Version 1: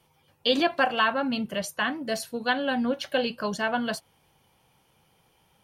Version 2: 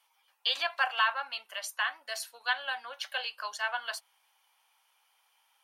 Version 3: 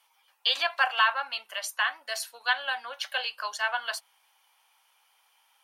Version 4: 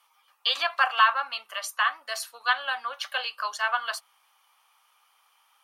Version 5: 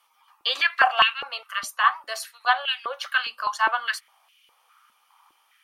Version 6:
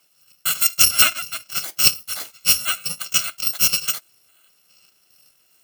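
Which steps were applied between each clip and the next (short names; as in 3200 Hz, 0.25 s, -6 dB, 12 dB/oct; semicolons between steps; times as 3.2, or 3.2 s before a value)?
HPF 870 Hz 24 dB/oct; gain -2.5 dB
notches 50/100/150/200 Hz; gain +4 dB
bell 1200 Hz +13.5 dB 0.2 oct
stepped high-pass 4.9 Hz 230–2700 Hz
FFT order left unsorted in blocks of 128 samples; gain +4 dB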